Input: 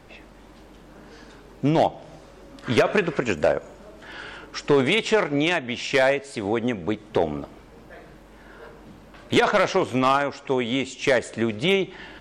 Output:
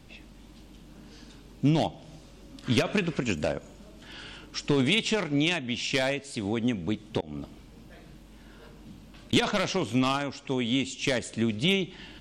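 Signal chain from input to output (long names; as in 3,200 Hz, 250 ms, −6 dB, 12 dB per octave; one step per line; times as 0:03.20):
0:07.20–0:09.33: volume swells 234 ms
flat-topped bell 870 Hz −9.5 dB 2.8 octaves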